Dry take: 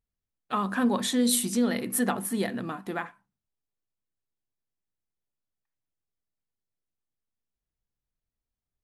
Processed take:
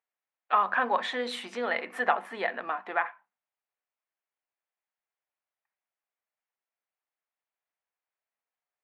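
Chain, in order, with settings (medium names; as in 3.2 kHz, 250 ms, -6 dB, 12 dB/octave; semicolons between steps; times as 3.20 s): Chebyshev band-pass 680–2300 Hz, order 2; trim +6.5 dB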